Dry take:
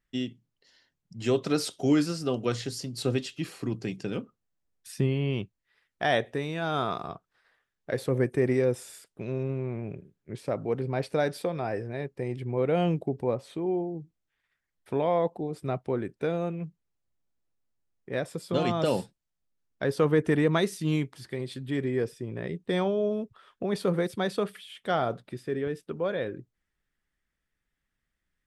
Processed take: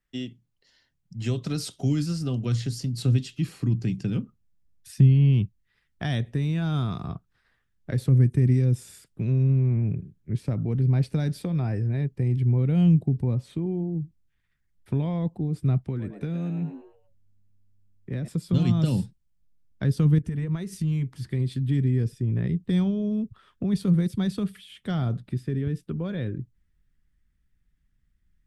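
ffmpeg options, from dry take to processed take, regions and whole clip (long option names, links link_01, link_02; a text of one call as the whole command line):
ffmpeg -i in.wav -filter_complex "[0:a]asettb=1/sr,asplit=3[link_01][link_02][link_03];[link_01]atrim=end=15.844[link_04];[link_02]atrim=start=15.84:end=18.28,asetpts=PTS-STARTPTS,afade=type=in:duration=0.004:curve=qsin,afade=type=out:start_time=2.436:duration=0.004:curve=qsin,asplit=5[link_05][link_06][link_07][link_08][link_09];[link_06]adelay=109,afreqshift=100,volume=-10dB[link_10];[link_07]adelay=218,afreqshift=200,volume=-17.5dB[link_11];[link_08]adelay=327,afreqshift=300,volume=-25.1dB[link_12];[link_09]adelay=436,afreqshift=400,volume=-32.6dB[link_13];[link_05][link_10][link_11][link_12][link_13]amix=inputs=5:normalize=0,atrim=end_sample=107604,acrossover=split=290|740|1500[link_14][link_15][link_16][link_17];[link_14]acompressor=threshold=-40dB:ratio=3[link_18];[link_15]acompressor=threshold=-40dB:ratio=3[link_19];[link_16]acompressor=threshold=-54dB:ratio=3[link_20];[link_17]acompressor=threshold=-49dB:ratio=3[link_21];[link_18][link_19][link_20][link_21]amix=inputs=4:normalize=0[link_22];[link_03]atrim=start=18.276[link_23];[link_04][link_22]acrossfade=duration=0.004:curve1=hsin:curve2=qsin[link_24];[link_24][link_23]acrossfade=duration=0.004:curve1=qsin:curve2=hsin,asettb=1/sr,asplit=3[link_25][link_26][link_27];[link_25]atrim=end=20.184[link_28];[link_26]atrim=start=20.18:end=21.17,asetpts=PTS-STARTPTS,afade=type=in:duration=0.004:curve=qsin,afade=type=out:start_time=0.986:duration=0.004:curve=qsin,equalizer=frequency=3800:width_type=o:width=0.37:gain=-4,bandreject=frequency=300:width=7.6,acompressor=threshold=-33dB:ratio=8:attack=3.2:release=140:knee=1:detection=peak[link_29];[link_27]atrim=start=21.166[link_30];[link_28][link_29]acrossfade=duration=0.004:curve1=hsin:curve2=qsin[link_31];[link_31][link_30]acrossfade=duration=0.004:curve1=qsin:curve2=hsin,asubboost=boost=8:cutoff=190,acrossover=split=240|3000[link_32][link_33][link_34];[link_33]acompressor=threshold=-32dB:ratio=6[link_35];[link_32][link_35][link_34]amix=inputs=3:normalize=0,volume=-1dB" out.wav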